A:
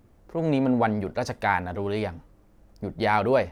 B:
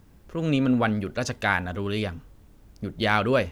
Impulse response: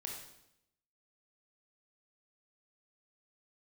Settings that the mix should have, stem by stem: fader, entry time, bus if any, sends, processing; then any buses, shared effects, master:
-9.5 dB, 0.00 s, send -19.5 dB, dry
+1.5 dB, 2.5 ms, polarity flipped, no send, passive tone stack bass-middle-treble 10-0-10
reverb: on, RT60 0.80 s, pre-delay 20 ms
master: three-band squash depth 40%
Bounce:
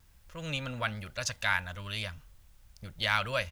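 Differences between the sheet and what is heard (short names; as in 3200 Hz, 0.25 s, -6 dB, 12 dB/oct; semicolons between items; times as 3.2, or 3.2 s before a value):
stem A -9.5 dB -> -20.0 dB; master: missing three-band squash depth 40%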